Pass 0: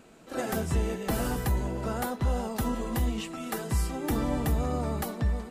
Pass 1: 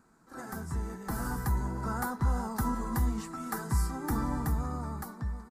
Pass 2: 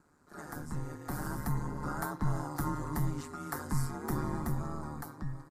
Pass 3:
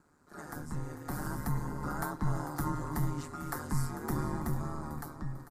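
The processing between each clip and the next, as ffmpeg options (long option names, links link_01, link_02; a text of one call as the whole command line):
ffmpeg -i in.wav -af "dynaudnorm=framelen=280:gausssize=9:maxgain=7.5dB,firequalizer=gain_entry='entry(190,0);entry(590,-11);entry(890,3);entry(1500,3);entry(2800,-18);entry(4600,-3);entry(10000,-1)':delay=0.05:min_phase=1,volume=-8dB" out.wav
ffmpeg -i in.wav -af "aeval=exprs='val(0)*sin(2*PI*75*n/s)':channel_layout=same" out.wav
ffmpeg -i in.wav -af "aecho=1:1:446|892|1338:0.211|0.0761|0.0274" out.wav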